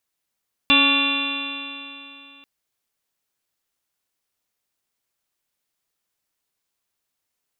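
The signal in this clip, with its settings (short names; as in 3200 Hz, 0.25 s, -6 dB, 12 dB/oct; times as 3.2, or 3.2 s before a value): stretched partials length 1.74 s, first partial 277 Hz, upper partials -11/-9.5/-2/-11/-11/-19.5/-2/5/-11/4/-11 dB, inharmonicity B 0.0027, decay 2.96 s, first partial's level -20 dB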